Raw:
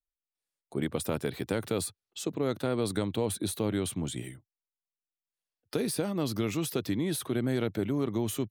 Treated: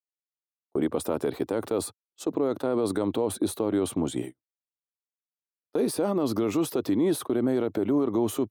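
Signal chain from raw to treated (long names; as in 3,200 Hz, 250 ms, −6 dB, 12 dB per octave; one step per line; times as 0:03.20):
noise gate −38 dBFS, range −39 dB
flat-topped bell 560 Hz +11.5 dB 2.7 octaves
brickwall limiter −16.5 dBFS, peak gain reduction 10 dB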